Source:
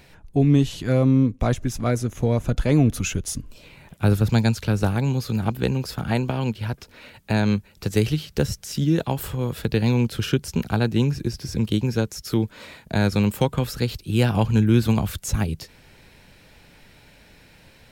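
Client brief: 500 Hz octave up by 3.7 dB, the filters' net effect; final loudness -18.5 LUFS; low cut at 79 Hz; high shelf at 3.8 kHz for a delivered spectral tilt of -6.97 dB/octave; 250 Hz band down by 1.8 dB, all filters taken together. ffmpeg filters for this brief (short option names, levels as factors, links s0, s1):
-af "highpass=79,equalizer=f=250:t=o:g=-3.5,equalizer=f=500:t=o:g=5.5,highshelf=f=3800:g=-4.5,volume=1.78"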